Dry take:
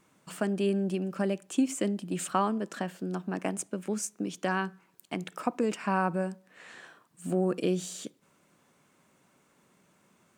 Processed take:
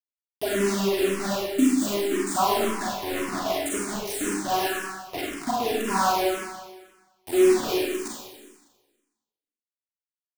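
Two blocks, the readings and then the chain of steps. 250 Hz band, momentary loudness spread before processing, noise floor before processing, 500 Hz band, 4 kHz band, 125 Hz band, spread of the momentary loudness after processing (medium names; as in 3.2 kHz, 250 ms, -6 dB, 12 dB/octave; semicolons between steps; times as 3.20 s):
+4.0 dB, 14 LU, -67 dBFS, +7.5 dB, +12.5 dB, -3.5 dB, 11 LU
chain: band-stop 2.3 kHz, Q 19; comb 2.9 ms, depth 98%; phase dispersion highs, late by 73 ms, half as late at 1.3 kHz; bit crusher 5-bit; Schroeder reverb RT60 1.3 s, combs from 31 ms, DRR -4.5 dB; barber-pole phaser -1.9 Hz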